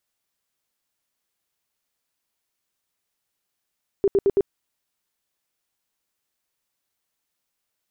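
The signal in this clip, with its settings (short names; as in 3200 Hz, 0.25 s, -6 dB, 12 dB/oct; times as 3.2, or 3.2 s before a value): tone bursts 396 Hz, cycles 15, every 0.11 s, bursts 4, -14 dBFS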